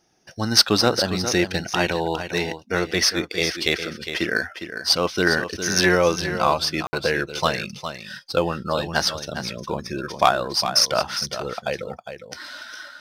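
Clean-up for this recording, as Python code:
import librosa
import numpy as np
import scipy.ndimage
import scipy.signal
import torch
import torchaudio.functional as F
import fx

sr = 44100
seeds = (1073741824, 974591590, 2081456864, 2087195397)

y = fx.fix_ambience(x, sr, seeds[0], print_start_s=0.0, print_end_s=0.5, start_s=6.87, end_s=6.93)
y = fx.fix_echo_inverse(y, sr, delay_ms=407, level_db=-9.5)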